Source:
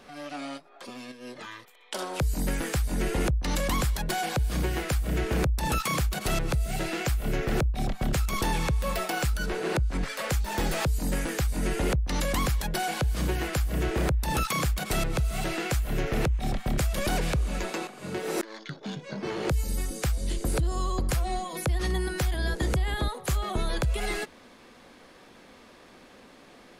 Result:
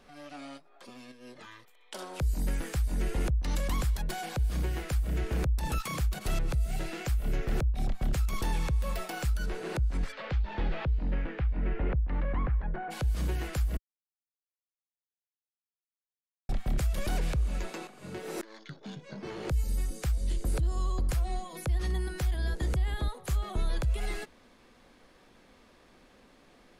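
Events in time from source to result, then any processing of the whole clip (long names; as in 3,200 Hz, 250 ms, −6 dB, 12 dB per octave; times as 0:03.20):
0:10.11–0:12.90: low-pass filter 4,100 Hz → 1,700 Hz 24 dB per octave
0:13.77–0:16.49: silence
whole clip: low-shelf EQ 77 Hz +11 dB; level −8 dB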